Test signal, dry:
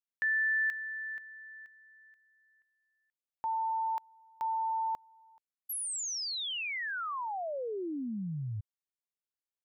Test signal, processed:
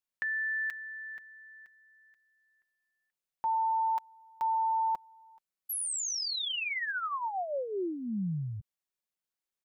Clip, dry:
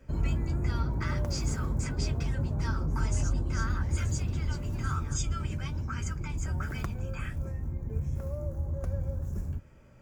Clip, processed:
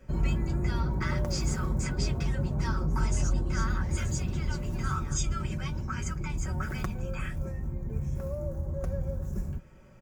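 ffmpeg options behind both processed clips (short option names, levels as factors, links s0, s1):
-af "aecho=1:1:5.4:0.42,volume=1.19"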